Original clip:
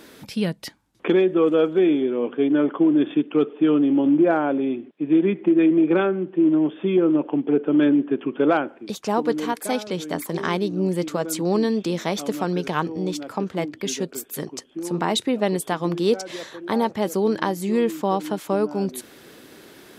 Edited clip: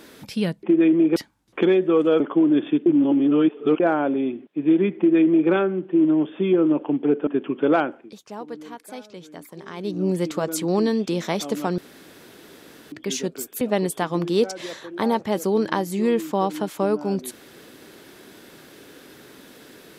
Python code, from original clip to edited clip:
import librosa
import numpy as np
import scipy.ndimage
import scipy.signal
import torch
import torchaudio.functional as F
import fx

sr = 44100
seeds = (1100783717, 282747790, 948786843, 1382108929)

y = fx.edit(x, sr, fx.cut(start_s=1.67, length_s=0.97),
    fx.reverse_span(start_s=3.3, length_s=0.94),
    fx.duplicate(start_s=5.41, length_s=0.53, to_s=0.63),
    fx.cut(start_s=7.71, length_s=0.33),
    fx.fade_down_up(start_s=8.7, length_s=2.04, db=-13.0, fade_s=0.21),
    fx.room_tone_fill(start_s=12.55, length_s=1.14),
    fx.cut(start_s=14.38, length_s=0.93), tone=tone)